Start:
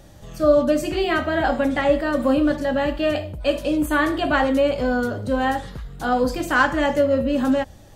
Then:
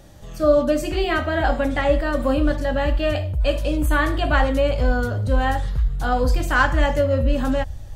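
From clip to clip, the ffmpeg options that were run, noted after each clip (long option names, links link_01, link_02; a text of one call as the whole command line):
ffmpeg -i in.wav -af "asubboost=boost=8:cutoff=90" out.wav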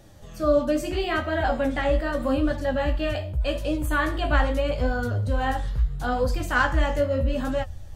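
ffmpeg -i in.wav -af "flanger=delay=8.4:depth=10:regen=40:speed=0.79:shape=triangular" out.wav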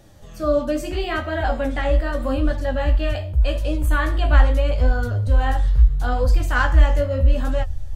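ffmpeg -i in.wav -af "asubboost=boost=4:cutoff=80,volume=1dB" out.wav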